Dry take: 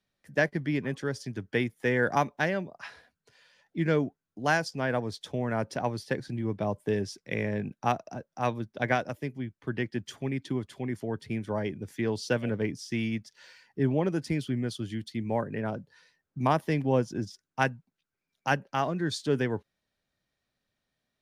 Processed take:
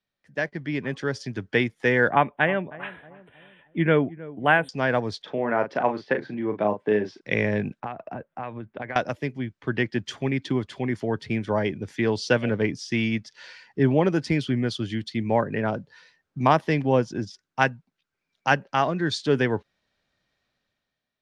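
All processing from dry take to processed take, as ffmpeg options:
ffmpeg -i in.wav -filter_complex "[0:a]asettb=1/sr,asplit=3[link_01][link_02][link_03];[link_01]atrim=end=2.104[link_04];[link_02]atrim=start=2.1:end=4.69,asetpts=PTS-STARTPTS,afade=type=in:duration=0.004:curve=qsin,afade=type=out:start_time=2.586:duration=0.004:curve=qsin,asuperstop=centerf=5500:order=12:qfactor=1.1,asplit=2[link_05][link_06];[link_06]adelay=314,lowpass=frequency=990:poles=1,volume=-17dB,asplit=2[link_07][link_08];[link_08]adelay=314,lowpass=frequency=990:poles=1,volume=0.46,asplit=2[link_09][link_10];[link_10]adelay=314,lowpass=frequency=990:poles=1,volume=0.46,asplit=2[link_11][link_12];[link_12]adelay=314,lowpass=frequency=990:poles=1,volume=0.46[link_13];[link_05][link_07][link_09][link_11][link_13]amix=inputs=5:normalize=0,atrim=end_sample=114219[link_14];[link_03]atrim=start=4.686[link_15];[link_04][link_14]acrossfade=duration=0.004:curve1=hsin:curve2=qsin[link_16];[link_16][link_15]acrossfade=duration=0.004:curve1=qsin:curve2=hsin,asettb=1/sr,asplit=3[link_17][link_18][link_19];[link_17]atrim=end=5.224[link_20];[link_18]atrim=start=5.22:end=7.21,asetpts=PTS-STARTPTS,afade=type=in:duration=0.004:curve=qsin,afade=type=out:start_time=1.986:duration=0.004:curve=qsin,highpass=230,lowpass=2300,asplit=2[link_21][link_22];[link_22]adelay=38,volume=-8dB[link_23];[link_21][link_23]amix=inputs=2:normalize=0,atrim=end_sample=87759[link_24];[link_19]atrim=start=7.206[link_25];[link_20][link_24]acrossfade=duration=0.004:curve1=hsin:curve2=qsin[link_26];[link_26][link_25]acrossfade=duration=0.004:curve1=qsin:curve2=hsin,asettb=1/sr,asplit=3[link_27][link_28][link_29];[link_27]atrim=end=7.804[link_30];[link_28]atrim=start=7.8:end=8.96,asetpts=PTS-STARTPTS,afade=type=in:duration=0.004:curve=qsin,afade=type=out:start_time=1.156:duration=0.004:curve=qsin,lowpass=frequency=2700:width=0.5412,lowpass=frequency=2700:width=1.3066,acompressor=threshold=-35dB:ratio=16:attack=3.2:release=140:knee=1:detection=peak[link_31];[link_29]atrim=start=8.956[link_32];[link_30][link_31]acrossfade=duration=0.004:curve1=hsin:curve2=qsin[link_33];[link_33][link_32]acrossfade=duration=0.004:curve1=qsin:curve2=hsin,lowpass=5200,lowshelf=frequency=490:gain=-4.5,dynaudnorm=framelen=210:gausssize=7:maxgain=11.5dB,volume=-2dB" out.wav

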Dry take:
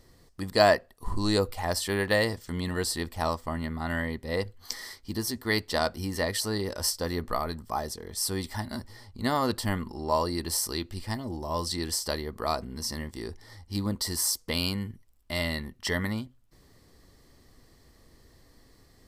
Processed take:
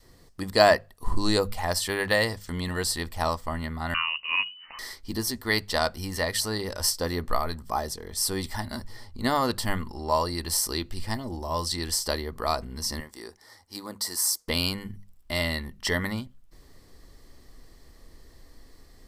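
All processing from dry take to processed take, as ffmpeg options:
ffmpeg -i in.wav -filter_complex "[0:a]asettb=1/sr,asplit=3[link_01][link_02][link_03];[link_01]atrim=end=3.944[link_04];[link_02]atrim=start=3.94:end=4.79,asetpts=PTS-STARTPTS,afade=type=in:duration=0.004:curve=qsin,afade=type=out:start_time=0.846:duration=0.004:curve=qsin,lowpass=frequency=2600:width_type=q:width=0.5098,lowpass=frequency=2600:width_type=q:width=0.6013,lowpass=frequency=2600:width_type=q:width=0.9,lowpass=frequency=2600:width_type=q:width=2.563,afreqshift=-3000,equalizer=frequency=640:width_type=o:width=0.33:gain=-3.5[link_05];[link_03]atrim=start=4.786[link_06];[link_04][link_05]acrossfade=duration=0.004:curve1=hsin:curve2=qsin[link_07];[link_07][link_06]acrossfade=duration=0.004:curve1=qsin:curve2=hsin,asettb=1/sr,asplit=3[link_08][link_09][link_10];[link_08]atrim=end=13.004[link_11];[link_09]atrim=start=13:end=14.48,asetpts=PTS-STARTPTS,afade=type=in:duration=0.004:curve=qsin,afade=type=out:start_time=1.476:duration=0.004:curve=qsin,highpass=frequency=800:poles=1,equalizer=frequency=3000:width_type=o:width=1.1:gain=-6.5[link_12];[link_10]atrim=start=14.476[link_13];[link_11][link_12]acrossfade=duration=0.004:curve1=hsin:curve2=qsin[link_14];[link_14][link_13]acrossfade=duration=0.004:curve1=qsin:curve2=hsin,asubboost=boost=2.5:cutoff=55,bandreject=frequency=50:width_type=h:width=6,bandreject=frequency=100:width_type=h:width=6,bandreject=frequency=150:width_type=h:width=6,bandreject=frequency=200:width_type=h:width=6,adynamicequalizer=threshold=0.00708:dfrequency=320:dqfactor=0.89:tfrequency=320:tqfactor=0.89:attack=5:release=100:ratio=0.375:range=3:mode=cutabove:tftype=bell,volume=3dB" out.wav

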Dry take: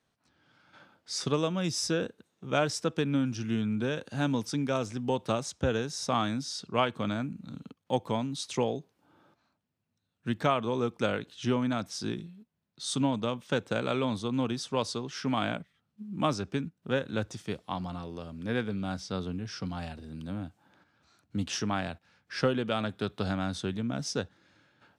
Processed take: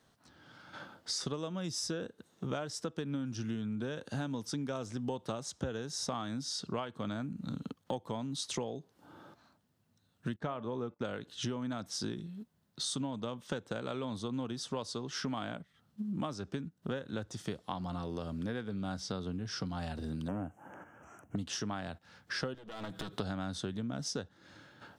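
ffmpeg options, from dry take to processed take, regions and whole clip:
ffmpeg -i in.wav -filter_complex "[0:a]asettb=1/sr,asplit=3[link_01][link_02][link_03];[link_01]atrim=end=10.364[link_04];[link_02]atrim=start=10.36:end=11.05,asetpts=PTS-STARTPTS,afade=type=in:duration=0.004:curve=qsin,afade=type=out:start_time=0.686:duration=0.004:curve=qsin,aemphasis=mode=reproduction:type=75kf,bandreject=frequency=290.5:width_type=h:width=4,bandreject=frequency=581:width_type=h:width=4,bandreject=frequency=871.5:width_type=h:width=4,bandreject=frequency=1162:width_type=h:width=4,bandreject=frequency=1452.5:width_type=h:width=4,bandreject=frequency=1743:width_type=h:width=4,bandreject=frequency=2033.5:width_type=h:width=4,bandreject=frequency=2324:width_type=h:width=4,bandreject=frequency=2614.5:width_type=h:width=4,agate=range=-18dB:threshold=-46dB:ratio=16:release=100:detection=peak[link_05];[link_03]atrim=start=11.046[link_06];[link_04][link_05]acrossfade=duration=0.004:curve1=hsin:curve2=qsin[link_07];[link_07][link_06]acrossfade=duration=0.004:curve1=qsin:curve2=hsin,asettb=1/sr,asplit=3[link_08][link_09][link_10];[link_08]atrim=end=20.284[link_11];[link_09]atrim=start=20.28:end=21.36,asetpts=PTS-STARTPTS,afade=type=in:duration=0.004:curve=qsin,afade=type=out:start_time=1.076:duration=0.004:curve=qsin,equalizer=frequency=610:width_type=o:width=2.1:gain=8,asoftclip=type=hard:threshold=-28dB,asuperstop=centerf=4200:order=8:qfactor=1.4[link_12];[link_10]atrim=start=21.356[link_13];[link_11][link_12]acrossfade=duration=0.004:curve1=hsin:curve2=qsin[link_14];[link_14][link_13]acrossfade=duration=0.004:curve1=qsin:curve2=hsin,asettb=1/sr,asplit=3[link_15][link_16][link_17];[link_15]atrim=end=22.544[link_18];[link_16]atrim=start=22.54:end=23.13,asetpts=PTS-STARTPTS,afade=type=in:duration=0.004:curve=qsin,afade=type=out:start_time=0.586:duration=0.004:curve=qsin,aecho=1:1:6.2:0.92,atrim=end_sample=26019,acompressor=threshold=-41dB:ratio=6:attack=3.2:release=140:knee=1:detection=peak,aeval=exprs='clip(val(0),-1,0.00266)':channel_layout=same[link_19];[link_17]atrim=start=23.126[link_20];[link_18][link_19]acrossfade=duration=0.004:curve1=hsin:curve2=qsin[link_21];[link_21][link_20]acrossfade=duration=0.004:curve1=qsin:curve2=hsin,acompressor=threshold=-43dB:ratio=8,equalizer=frequency=2400:width=3.8:gain=-6.5,volume=8.5dB" out.wav

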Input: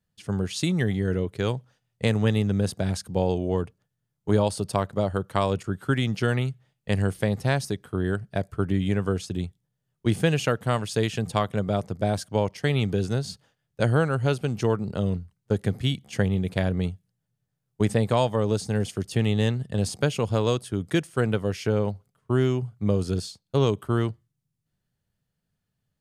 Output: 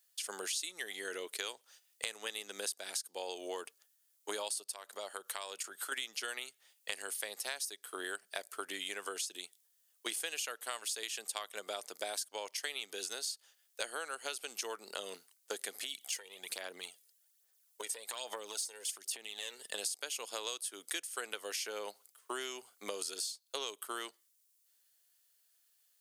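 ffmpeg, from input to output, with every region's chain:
ffmpeg -i in.wav -filter_complex "[0:a]asettb=1/sr,asplit=3[link_01][link_02][link_03];[link_01]atrim=end=4.624[link_04];[link_02]atrim=start=4.62:end=5.92,asetpts=PTS-STARTPTS,afade=type=in:duration=0.004:curve=qsin,afade=type=out:start_time=1.296:duration=0.004:curve=qsin,acompressor=threshold=-38dB:ratio=2:attack=3.2:release=140:knee=1:detection=peak,equalizer=frequency=300:width_type=o:width=0.28:gain=-3.5[link_05];[link_03]atrim=start=5.916[link_06];[link_04][link_05]acrossfade=duration=0.004:curve1=hsin:curve2=qsin[link_07];[link_07][link_06]acrossfade=duration=0.004:curve1=qsin:curve2=hsin,asettb=1/sr,asplit=3[link_08][link_09][link_10];[link_08]atrim=end=15.824[link_11];[link_09]atrim=start=15.82:end=19.65,asetpts=PTS-STARTPTS,afade=type=in:duration=0.004:curve=qsin,afade=type=out:start_time=3.826:duration=0.004:curve=qsin,acompressor=threshold=-31dB:ratio=8:attack=3.2:release=140:knee=1:detection=peak,aphaser=in_gain=1:out_gain=1:delay=2.2:decay=0.5:speed=1.2:type=sinusoidal[link_12];[link_10]atrim=start=19.646[link_13];[link_11][link_12]acrossfade=duration=0.004:curve1=hsin:curve2=qsin[link_14];[link_14][link_13]acrossfade=duration=0.004:curve1=qsin:curve2=hsin,highpass=frequency=320:width=0.5412,highpass=frequency=320:width=1.3066,aderivative,acompressor=threshold=-53dB:ratio=6,volume=16dB" out.wav

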